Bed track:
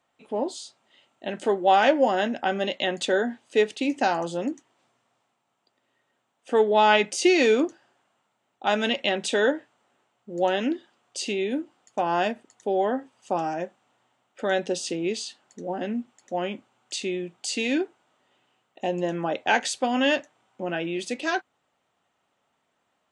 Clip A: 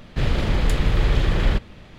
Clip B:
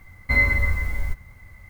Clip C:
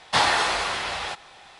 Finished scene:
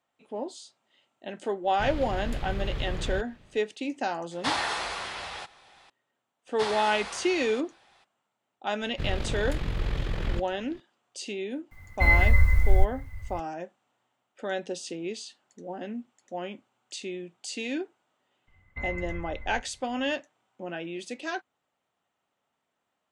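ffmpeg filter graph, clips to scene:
ffmpeg -i bed.wav -i cue0.wav -i cue1.wav -i cue2.wav -filter_complex "[1:a]asplit=2[link_01][link_02];[3:a]asplit=2[link_03][link_04];[2:a]asplit=2[link_05][link_06];[0:a]volume=-7dB[link_07];[link_02]tremolo=f=44:d=0.621[link_08];[link_05]asubboost=boost=8:cutoff=120[link_09];[link_06]lowpass=frequency=2600:width=0.5412,lowpass=frequency=2600:width=1.3066[link_10];[link_01]atrim=end=1.98,asetpts=PTS-STARTPTS,volume=-13dB,afade=type=in:duration=0.05,afade=type=out:start_time=1.93:duration=0.05,adelay=1630[link_11];[link_03]atrim=end=1.59,asetpts=PTS-STARTPTS,volume=-8dB,afade=type=in:duration=0.004:curve=hsin,afade=type=out:start_time=1.586:duration=0.004:curve=hsin,adelay=4310[link_12];[link_04]atrim=end=1.59,asetpts=PTS-STARTPTS,volume=-13dB,afade=type=in:duration=0.02,afade=type=out:start_time=1.57:duration=0.02,adelay=6460[link_13];[link_08]atrim=end=1.98,asetpts=PTS-STARTPTS,volume=-7.5dB,afade=type=in:duration=0.004:curve=hsin,afade=type=out:start_time=1.976:duration=0.004:curve=hsin,adelay=388962S[link_14];[link_09]atrim=end=1.69,asetpts=PTS-STARTPTS,volume=-3dB,afade=type=in:duration=0.004:curve=hsin,afade=type=out:start_time=1.686:duration=0.004:curve=hsin,adelay=11710[link_15];[link_10]atrim=end=1.69,asetpts=PTS-STARTPTS,volume=-15dB,afade=type=in:duration=0.004:curve=hsin,afade=type=out:start_time=1.686:duration=0.004:curve=hsin,adelay=18470[link_16];[link_07][link_11][link_12][link_13][link_14][link_15][link_16]amix=inputs=7:normalize=0" out.wav

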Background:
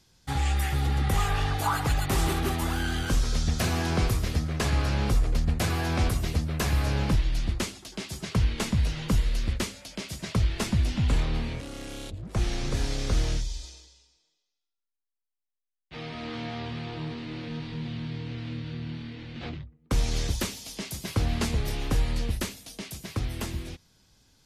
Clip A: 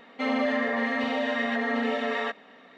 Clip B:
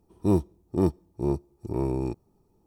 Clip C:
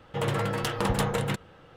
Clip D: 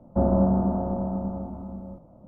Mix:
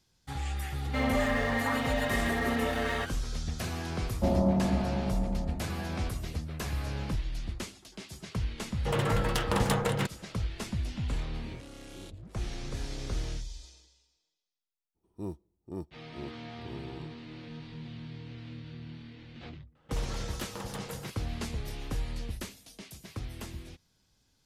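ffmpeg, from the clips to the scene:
ffmpeg -i bed.wav -i cue0.wav -i cue1.wav -i cue2.wav -i cue3.wav -filter_complex "[3:a]asplit=2[link_01][link_02];[2:a]asplit=2[link_03][link_04];[0:a]volume=-8.5dB[link_05];[1:a]aeval=exprs='sgn(val(0))*max(abs(val(0))-0.00794,0)':channel_layout=same[link_06];[link_03]acompressor=threshold=-30dB:ratio=6:attack=3.2:release=140:knee=1:detection=peak[link_07];[link_06]atrim=end=2.77,asetpts=PTS-STARTPTS,volume=-2dB,afade=type=in:duration=0.004:curve=hsin,afade=type=out:start_time=2.766:duration=0.004:curve=hsin,adelay=740[link_08];[4:a]atrim=end=2.27,asetpts=PTS-STARTPTS,volume=-5dB,afade=type=in:duration=0.004:curve=hsin,afade=type=out:start_time=2.266:duration=0.004:curve=hsin,adelay=4060[link_09];[link_01]atrim=end=1.76,asetpts=PTS-STARTPTS,volume=-1dB,afade=type=in:duration=0.004:curve=hsin,afade=type=out:start_time=1.756:duration=0.004:curve=hsin,adelay=8710[link_10];[link_07]atrim=end=2.66,asetpts=PTS-STARTPTS,volume=-15.5dB,afade=type=in:duration=0.004:curve=hsin,afade=type=out:start_time=2.656:duration=0.004:curve=hsin,adelay=11200[link_11];[link_04]atrim=end=2.66,asetpts=PTS-STARTPTS,volume=-16dB,afade=type=in:duration=0.02,afade=type=out:start_time=2.64:duration=0.02,adelay=14940[link_12];[link_02]atrim=end=1.76,asetpts=PTS-STARTPTS,volume=-13.5dB,afade=type=in:duration=0.004:curve=hsin,afade=type=out:start_time=1.756:duration=0.004:curve=hsin,adelay=19750[link_13];[link_05][link_08][link_09][link_10][link_11][link_12][link_13]amix=inputs=7:normalize=0" out.wav

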